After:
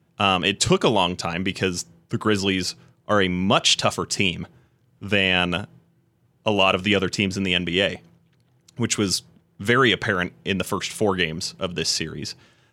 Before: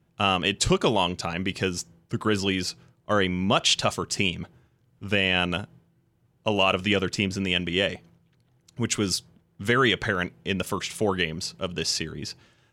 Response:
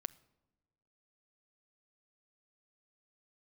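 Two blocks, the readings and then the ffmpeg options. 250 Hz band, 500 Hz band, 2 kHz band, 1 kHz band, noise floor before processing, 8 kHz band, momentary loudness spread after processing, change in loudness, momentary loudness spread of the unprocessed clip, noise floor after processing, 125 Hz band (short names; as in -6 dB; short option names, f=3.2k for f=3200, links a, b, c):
+3.5 dB, +3.5 dB, +3.5 dB, +3.5 dB, -66 dBFS, +3.5 dB, 12 LU, +3.5 dB, 12 LU, -64 dBFS, +3.0 dB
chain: -af "highpass=79,volume=3.5dB"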